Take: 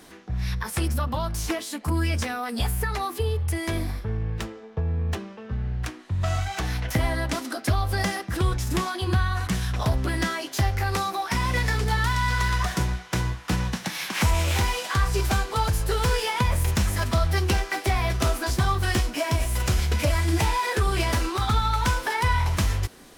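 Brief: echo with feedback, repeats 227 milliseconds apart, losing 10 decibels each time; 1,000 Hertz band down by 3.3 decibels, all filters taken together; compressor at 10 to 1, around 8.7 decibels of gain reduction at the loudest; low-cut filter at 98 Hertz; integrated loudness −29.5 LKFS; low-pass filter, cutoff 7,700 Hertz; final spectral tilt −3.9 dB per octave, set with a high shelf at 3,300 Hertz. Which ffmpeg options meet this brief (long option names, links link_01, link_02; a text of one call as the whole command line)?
ffmpeg -i in.wav -af "highpass=98,lowpass=7700,equalizer=frequency=1000:width_type=o:gain=-4.5,highshelf=frequency=3300:gain=5,acompressor=threshold=-29dB:ratio=10,aecho=1:1:227|454|681|908:0.316|0.101|0.0324|0.0104,volume=3dB" out.wav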